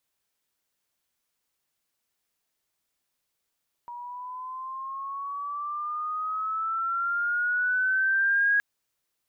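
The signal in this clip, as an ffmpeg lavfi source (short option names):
-f lavfi -i "aevalsrc='pow(10,(-19+17*(t/4.72-1))/20)*sin(2*PI*955*4.72/(9.5*log(2)/12)*(exp(9.5*log(2)/12*t/4.72)-1))':d=4.72:s=44100"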